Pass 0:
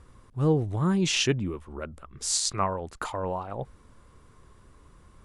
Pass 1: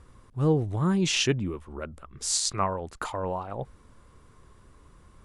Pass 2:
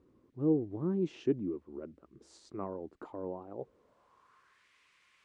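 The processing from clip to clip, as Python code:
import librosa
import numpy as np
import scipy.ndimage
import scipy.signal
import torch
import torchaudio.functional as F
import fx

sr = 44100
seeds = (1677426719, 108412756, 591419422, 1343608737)

y1 = x
y2 = fx.dmg_noise_band(y1, sr, seeds[0], low_hz=1500.0, high_hz=9800.0, level_db=-62.0)
y2 = fx.filter_sweep_bandpass(y2, sr, from_hz=320.0, to_hz=2200.0, start_s=3.5, end_s=4.69, q=2.5)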